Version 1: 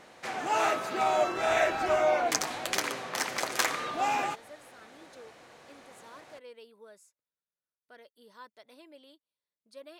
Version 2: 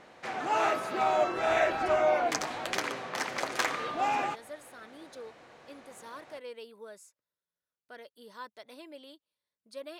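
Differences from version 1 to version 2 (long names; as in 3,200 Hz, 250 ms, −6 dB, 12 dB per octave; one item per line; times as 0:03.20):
speech +5.5 dB
background: add low-pass filter 3,500 Hz 6 dB per octave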